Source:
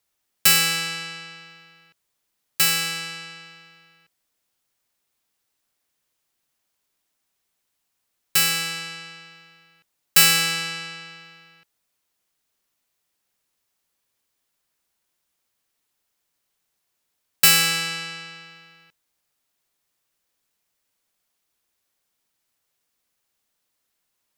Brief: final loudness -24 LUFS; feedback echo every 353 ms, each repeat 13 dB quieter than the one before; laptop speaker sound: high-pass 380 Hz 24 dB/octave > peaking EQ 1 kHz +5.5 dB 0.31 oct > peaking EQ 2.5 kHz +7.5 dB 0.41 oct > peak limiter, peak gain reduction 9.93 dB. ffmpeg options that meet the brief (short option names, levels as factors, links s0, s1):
-af "highpass=f=380:w=0.5412,highpass=f=380:w=1.3066,equalizer=f=1000:t=o:w=0.31:g=5.5,equalizer=f=2500:t=o:w=0.41:g=7.5,aecho=1:1:353|706|1059:0.224|0.0493|0.0108,volume=0.708,alimiter=limit=0.211:level=0:latency=1"